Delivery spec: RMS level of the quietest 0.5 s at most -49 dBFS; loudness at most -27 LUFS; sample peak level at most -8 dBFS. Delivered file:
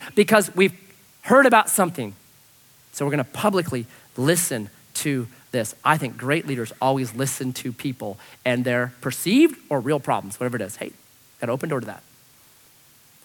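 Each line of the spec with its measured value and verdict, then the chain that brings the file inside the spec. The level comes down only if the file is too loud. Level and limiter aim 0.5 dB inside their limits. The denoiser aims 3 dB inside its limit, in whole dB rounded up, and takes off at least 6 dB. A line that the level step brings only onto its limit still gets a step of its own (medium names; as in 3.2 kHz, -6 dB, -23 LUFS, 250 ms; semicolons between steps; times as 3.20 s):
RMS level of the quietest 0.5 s -54 dBFS: pass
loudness -22.0 LUFS: fail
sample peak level -3.0 dBFS: fail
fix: trim -5.5 dB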